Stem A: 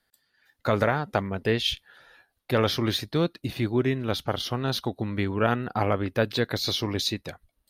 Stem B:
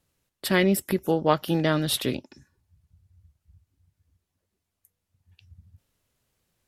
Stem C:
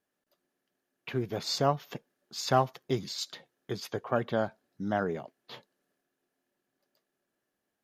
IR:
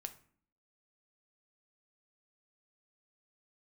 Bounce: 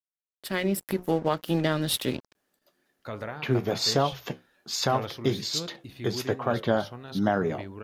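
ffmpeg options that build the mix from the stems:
-filter_complex "[0:a]bandreject=frequency=67.33:width_type=h:width=4,bandreject=frequency=134.66:width_type=h:width=4,bandreject=frequency=201.99:width_type=h:width=4,bandreject=frequency=269.32:width_type=h:width=4,bandreject=frequency=336.65:width_type=h:width=4,bandreject=frequency=403.98:width_type=h:width=4,bandreject=frequency=471.31:width_type=h:width=4,bandreject=frequency=538.64:width_type=h:width=4,bandreject=frequency=605.97:width_type=h:width=4,bandreject=frequency=673.3:width_type=h:width=4,bandreject=frequency=740.63:width_type=h:width=4,bandreject=frequency=807.96:width_type=h:width=4,bandreject=frequency=875.29:width_type=h:width=4,bandreject=frequency=942.62:width_type=h:width=4,bandreject=frequency=1009.95:width_type=h:width=4,bandreject=frequency=1077.28:width_type=h:width=4,bandreject=frequency=1144.61:width_type=h:width=4,bandreject=frequency=1211.94:width_type=h:width=4,bandreject=frequency=1279.27:width_type=h:width=4,bandreject=frequency=1346.6:width_type=h:width=4,bandreject=frequency=1413.93:width_type=h:width=4,adelay=2400,volume=-12.5dB[link_01];[1:a]bandreject=frequency=60:width_type=h:width=6,bandreject=frequency=120:width_type=h:width=6,bandreject=frequency=180:width_type=h:width=6,bandreject=frequency=240:width_type=h:width=6,bandreject=frequency=300:width_type=h:width=6,bandreject=frequency=360:width_type=h:width=6,bandreject=frequency=420:width_type=h:width=6,bandreject=frequency=480:width_type=h:width=6,aeval=exprs='sgn(val(0))*max(abs(val(0))-0.00841,0)':channel_layout=same,volume=-9dB[link_02];[2:a]flanger=delay=9.6:depth=5:regen=-68:speed=1.2:shape=sinusoidal,adelay=2350,volume=2.5dB[link_03];[link_02][link_03]amix=inputs=2:normalize=0,dynaudnorm=framelen=300:gausssize=5:maxgain=9dB,alimiter=limit=-12dB:level=0:latency=1:release=184,volume=0dB[link_04];[link_01][link_04]amix=inputs=2:normalize=0"

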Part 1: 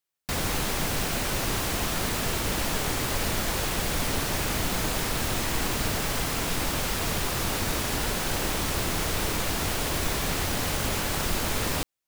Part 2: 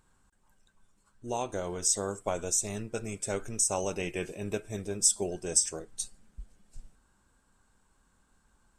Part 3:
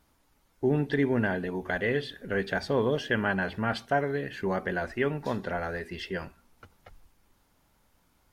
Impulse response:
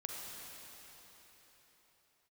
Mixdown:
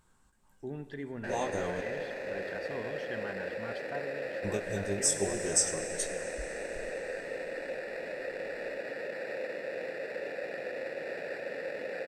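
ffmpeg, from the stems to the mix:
-filter_complex "[0:a]highpass=frequency=140:width=0.5412,highpass=frequency=140:width=1.3066,acrusher=samples=14:mix=1:aa=0.000001,asplit=3[link_01][link_02][link_03];[link_01]bandpass=frequency=530:width_type=q:width=8,volume=0dB[link_04];[link_02]bandpass=frequency=1840:width_type=q:width=8,volume=-6dB[link_05];[link_03]bandpass=frequency=2480:width_type=q:width=8,volume=-9dB[link_06];[link_04][link_05][link_06]amix=inputs=3:normalize=0,adelay=950,volume=2.5dB[link_07];[1:a]flanger=delay=17.5:depth=3:speed=0.5,volume=1dB,asplit=3[link_08][link_09][link_10];[link_08]atrim=end=1.81,asetpts=PTS-STARTPTS,afade=type=out:start_time=1.806:duration=0.004:curve=hsin[link_11];[link_09]atrim=start=1.81:end=4.44,asetpts=PTS-STARTPTS,volume=0[link_12];[link_10]atrim=start=4.44,asetpts=PTS-STARTPTS,afade=type=in:duration=0.004:curve=hsin[link_13];[link_11][link_12][link_13]concat=n=3:v=0:a=1,asplit=2[link_14][link_15];[link_15]volume=-7dB[link_16];[2:a]volume=-16.5dB,asplit=3[link_17][link_18][link_19];[link_18]volume=-9dB[link_20];[link_19]apad=whole_len=387427[link_21];[link_14][link_21]sidechaincompress=threshold=-45dB:ratio=8:attack=32:release=158[link_22];[3:a]atrim=start_sample=2205[link_23];[link_16][link_20]amix=inputs=2:normalize=0[link_24];[link_24][link_23]afir=irnorm=-1:irlink=0[link_25];[link_07][link_22][link_17][link_25]amix=inputs=4:normalize=0"

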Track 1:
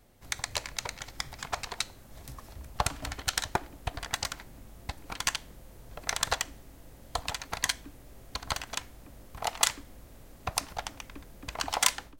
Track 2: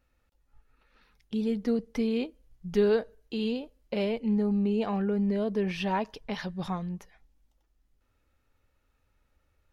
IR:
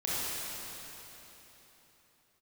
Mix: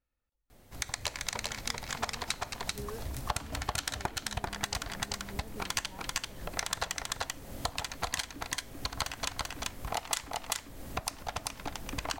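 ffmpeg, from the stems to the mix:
-filter_complex "[0:a]dynaudnorm=framelen=240:gausssize=3:maxgain=7.5dB,adelay=500,volume=3dB,asplit=2[link_01][link_02];[link_02]volume=-3.5dB[link_03];[1:a]volume=-14.5dB[link_04];[link_03]aecho=0:1:389:1[link_05];[link_01][link_04][link_05]amix=inputs=3:normalize=0,acompressor=threshold=-36dB:ratio=2.5"

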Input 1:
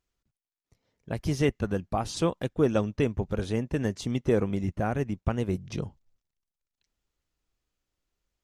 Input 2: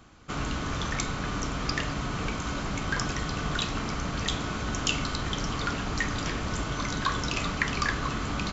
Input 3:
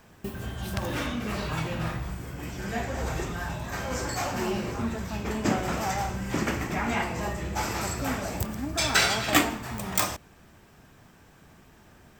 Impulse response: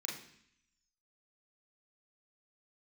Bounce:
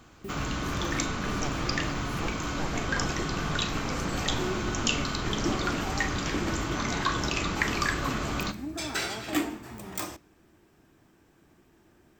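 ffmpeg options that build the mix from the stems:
-filter_complex "[0:a]aeval=exprs='abs(val(0))':channel_layout=same,volume=-11.5dB[link_01];[1:a]volume=-1.5dB,asplit=2[link_02][link_03];[link_03]volume=-9dB[link_04];[2:a]equalizer=frequency=330:width_type=o:width=0.52:gain=11.5,asoftclip=type=tanh:threshold=-7.5dB,volume=-9.5dB,asplit=2[link_05][link_06];[link_06]volume=-21dB[link_07];[3:a]atrim=start_sample=2205[link_08];[link_04][link_07]amix=inputs=2:normalize=0[link_09];[link_09][link_08]afir=irnorm=-1:irlink=0[link_10];[link_01][link_02][link_05][link_10]amix=inputs=4:normalize=0"

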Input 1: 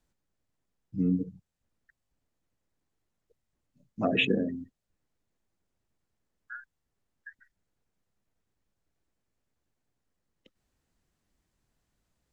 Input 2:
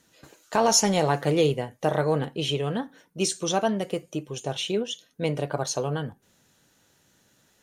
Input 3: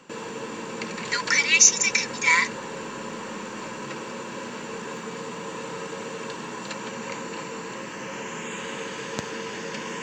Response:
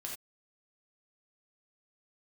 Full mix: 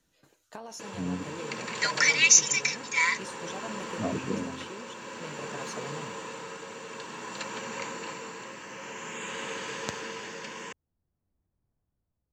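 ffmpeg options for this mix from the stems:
-filter_complex "[0:a]lowpass=1000,volume=-4dB[link_01];[1:a]highpass=160,acompressor=threshold=-26dB:ratio=4,volume=-11.5dB[link_02];[2:a]lowshelf=frequency=290:gain=-10.5,adelay=700,volume=-1dB[link_03];[link_01][link_02][link_03]amix=inputs=3:normalize=0,equalizer=frequency=91:width=1.1:gain=8,tremolo=f=0.52:d=0.42"

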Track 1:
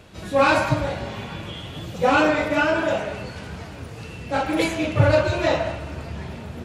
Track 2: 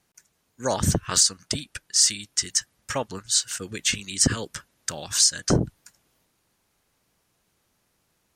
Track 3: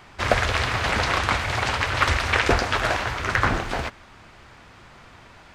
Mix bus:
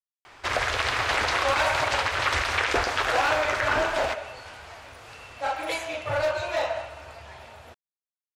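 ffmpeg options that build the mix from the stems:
ffmpeg -i stem1.wav -i stem2.wav -i stem3.wav -filter_complex "[0:a]lowshelf=frequency=490:width_type=q:width=1.5:gain=-9,asoftclip=type=hard:threshold=-15dB,adelay=1100,volume=-4.5dB[link_01];[2:a]lowshelf=frequency=120:gain=-10.5,adelay=250,volume=0dB[link_02];[link_01][link_02]amix=inputs=2:normalize=0,equalizer=frequency=180:width=1.7:gain=-14,alimiter=limit=-12.5dB:level=0:latency=1:release=56" out.wav

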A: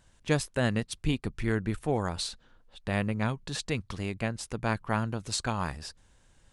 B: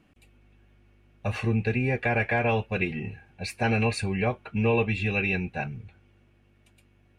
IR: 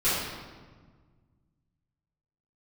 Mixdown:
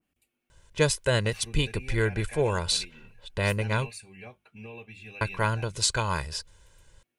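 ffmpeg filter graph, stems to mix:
-filter_complex "[0:a]aecho=1:1:2:0.7,adelay=500,volume=1.5dB,asplit=3[link_01][link_02][link_03];[link_01]atrim=end=3.89,asetpts=PTS-STARTPTS,afade=type=out:start_time=3.886:duration=0.004:curve=hsin[link_04];[link_02]atrim=start=3.89:end=5.21,asetpts=PTS-STARTPTS,volume=0[link_05];[link_03]atrim=start=5.21,asetpts=PTS-STARTPTS,afade=type=in:duration=0.004:curve=hsin[link_06];[link_04][link_05][link_06]concat=n=3:v=0:a=1[link_07];[1:a]aemphasis=mode=production:type=75fm,bandreject=frequency=50:width_type=h:width=6,bandreject=frequency=100:width_type=h:width=6,bandreject=frequency=150:width_type=h:width=6,bandreject=frequency=200:width_type=h:width=6,alimiter=limit=-16.5dB:level=0:latency=1:release=371,volume=-17.5dB[link_08];[link_07][link_08]amix=inputs=2:normalize=0,adynamicequalizer=threshold=0.00891:dfrequency=2000:dqfactor=0.7:tfrequency=2000:tqfactor=0.7:attack=5:release=100:ratio=0.375:range=2.5:mode=boostabove:tftype=highshelf"

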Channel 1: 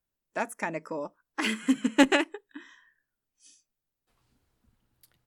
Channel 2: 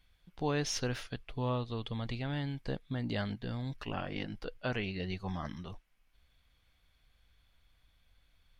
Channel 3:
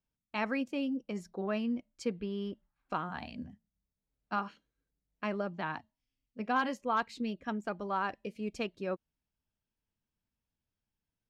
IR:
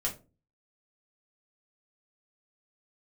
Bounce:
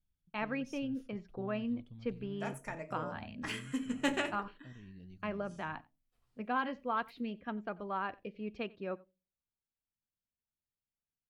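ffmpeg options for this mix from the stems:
-filter_complex "[0:a]adelay=2050,volume=-15dB,asplit=3[link_01][link_02][link_03];[link_02]volume=-4dB[link_04];[link_03]volume=-15dB[link_05];[1:a]equalizer=frequency=125:width_type=o:width=1:gain=5,equalizer=frequency=250:width_type=o:width=1:gain=5,equalizer=frequency=500:width_type=o:width=1:gain=-9,equalizer=frequency=1000:width_type=o:width=1:gain=-10,equalizer=frequency=2000:width_type=o:width=1:gain=-10,equalizer=frequency=4000:width_type=o:width=1:gain=-10,alimiter=level_in=2.5dB:limit=-24dB:level=0:latency=1:release=96,volume=-2.5dB,volume=-17dB,asplit=2[link_06][link_07];[link_07]volume=-18dB[link_08];[2:a]lowpass=frequency=3700:width=0.5412,lowpass=frequency=3700:width=1.3066,agate=range=-9dB:threshold=-56dB:ratio=16:detection=peak,volume=-4dB,asplit=3[link_09][link_10][link_11];[link_10]volume=-22.5dB[link_12];[link_11]volume=-23.5dB[link_13];[3:a]atrim=start_sample=2205[link_14];[link_04][link_08][link_12]amix=inputs=3:normalize=0[link_15];[link_15][link_14]afir=irnorm=-1:irlink=0[link_16];[link_05][link_13]amix=inputs=2:normalize=0,aecho=0:1:90:1[link_17];[link_01][link_06][link_09][link_16][link_17]amix=inputs=5:normalize=0"

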